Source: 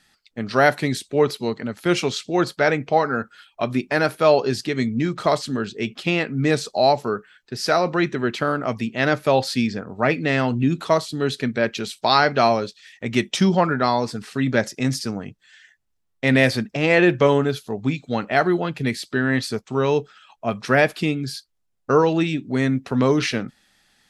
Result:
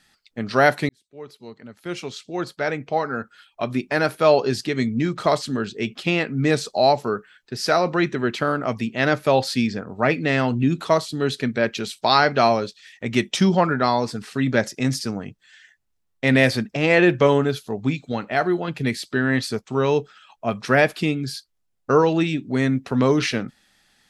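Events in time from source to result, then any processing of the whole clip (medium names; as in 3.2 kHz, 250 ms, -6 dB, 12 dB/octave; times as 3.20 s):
0.89–4.33 s: fade in
18.12–18.68 s: feedback comb 120 Hz, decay 0.21 s, mix 40%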